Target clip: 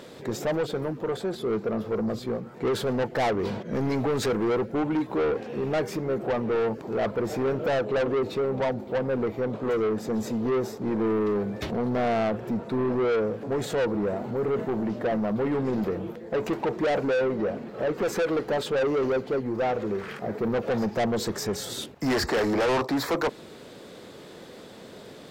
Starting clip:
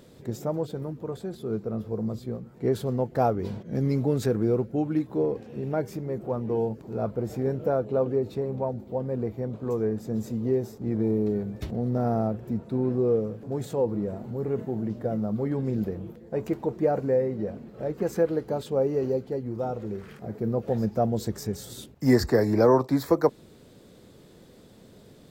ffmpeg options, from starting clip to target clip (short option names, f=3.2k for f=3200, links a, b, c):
-filter_complex "[0:a]asplit=2[a][b];[b]highpass=f=720:p=1,volume=20dB,asoftclip=type=tanh:threshold=-8.5dB[c];[a][c]amix=inputs=2:normalize=0,lowpass=f=3.1k:p=1,volume=-6dB,asoftclip=type=tanh:threshold=-21.5dB"